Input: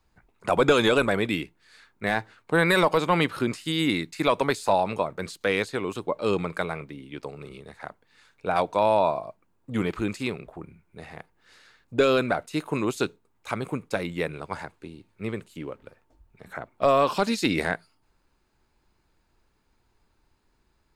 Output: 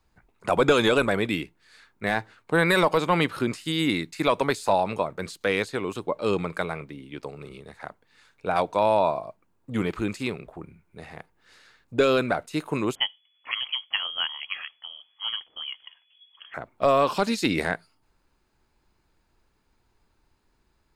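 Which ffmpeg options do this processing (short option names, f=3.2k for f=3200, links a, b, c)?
-filter_complex "[0:a]asettb=1/sr,asplit=3[a][b][c];[a]atrim=end=12.954[d];[b]atrim=start=12.95:end=16.54,asetpts=PTS-STARTPTS,afade=t=in:d=0.004:c=qsin,afade=t=out:st=3.586:d=0.004:c=qsin,lowpass=f=2.9k:t=q:w=0.5098,lowpass=f=2.9k:t=q:w=0.6013,lowpass=f=2.9k:t=q:w=0.9,lowpass=f=2.9k:t=q:w=2.563,afreqshift=-3400[e];[c]atrim=start=16.536[f];[d][e]acrossfade=d=0.004:c1=hsin:c2=qsin[g];[g][f]acrossfade=d=0.004:c1=qsin:c2=hsin"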